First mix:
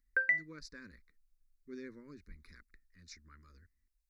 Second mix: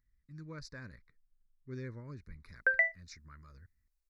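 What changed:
background: entry +2.50 s
master: remove phaser with its sweep stopped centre 300 Hz, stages 4

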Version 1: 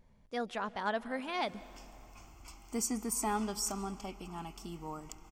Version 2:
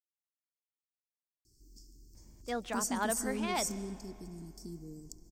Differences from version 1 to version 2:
speech: entry +2.15 s
background: add Chebyshev band-stop filter 420–4,600 Hz, order 4

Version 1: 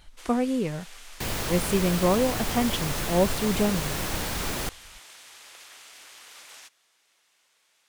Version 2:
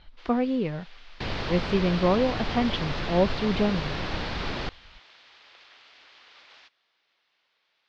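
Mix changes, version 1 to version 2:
first sound −3.5 dB
master: add Butterworth low-pass 4,700 Hz 36 dB per octave

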